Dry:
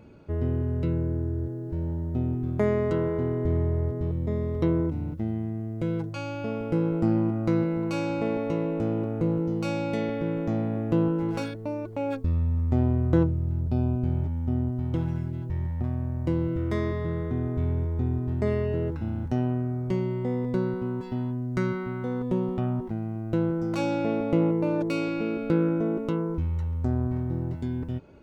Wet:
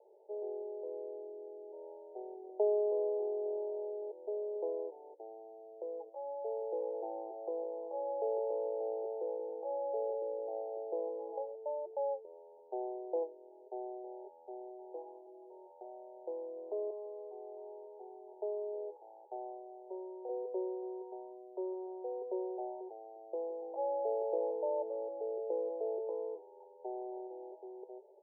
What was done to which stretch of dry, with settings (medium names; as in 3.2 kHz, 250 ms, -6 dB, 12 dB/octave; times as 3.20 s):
10.13–11.32 s: low-pass 1.1 kHz
16.90–20.29 s: tilt EQ +4.5 dB/octave
26.79–27.27 s: level flattener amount 50%
whole clip: Chebyshev band-pass 380–900 Hz, order 5; trim -3.5 dB